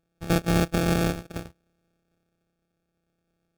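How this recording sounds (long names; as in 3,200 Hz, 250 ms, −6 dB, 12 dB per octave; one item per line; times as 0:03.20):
a buzz of ramps at a fixed pitch in blocks of 256 samples
tremolo triangle 0.65 Hz, depth 30%
aliases and images of a low sample rate 1,000 Hz, jitter 0%
MP3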